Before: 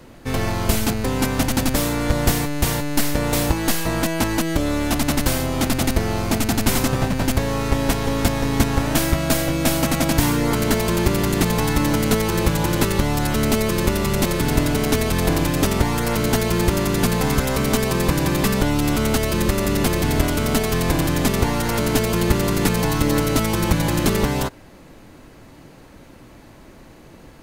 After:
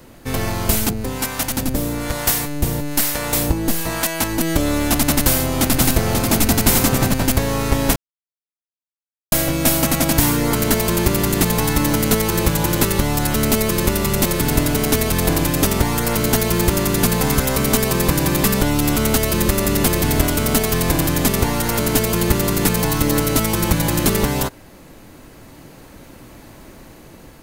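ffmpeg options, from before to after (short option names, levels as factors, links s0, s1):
-filter_complex "[0:a]asettb=1/sr,asplit=3[s0][s1][s2];[s0]atrim=end=0.894[s3];[s1]atrim=start=0.89:end=4.41,asetpts=PTS-STARTPTS,afade=t=in:d=0.004:c=qsin,afade=t=out:st=3.516:d=0.004:c=qsin,acrossover=split=620[s4][s5];[s4]aeval=exprs='val(0)*(1-0.7/2+0.7/2*cos(2*PI*1.1*n/s))':c=same[s6];[s5]aeval=exprs='val(0)*(1-0.7/2-0.7/2*cos(2*PI*1.1*n/s))':c=same[s7];[s6][s7]amix=inputs=2:normalize=0[s8];[s2]atrim=start=4.406[s9];[s3][s8]acrossfade=d=0.004:c1=hsin:c2=qsin[s10];[s10][s9]acrossfade=d=0.004:c1=qsin:c2=hsin,asettb=1/sr,asplit=3[s11][s12][s13];[s11]atrim=end=5.204[s14];[s12]atrim=start=5.2:end=7.14,asetpts=PTS-STARTPTS,afade=t=in:d=0.004:c=qsin,afade=t=out:st=1.936:d=0.004:c=qsin,aecho=1:1:538:0.562,atrim=end_sample=85554[s15];[s13]atrim=start=7.136[s16];[s14][s15]acrossfade=d=0.004:c1=hsin:c2=qsin[s17];[s17][s16]acrossfade=d=0.004:c1=qsin:c2=hsin,asplit=3[s18][s19][s20];[s18]atrim=end=7.96,asetpts=PTS-STARTPTS,afade=t=out:st=7.956:d=0.004:c=hsin[s21];[s19]atrim=start=7.96:end=9.32,asetpts=PTS-STARTPTS,volume=0[s22];[s20]atrim=start=9.32,asetpts=PTS-STARTPTS,afade=t=in:d=0.004:c=hsin[s23];[s21][s22][s23]concat=n=3:v=0:a=1,highshelf=f=8900:g=10.5,dynaudnorm=f=740:g=5:m=2.11"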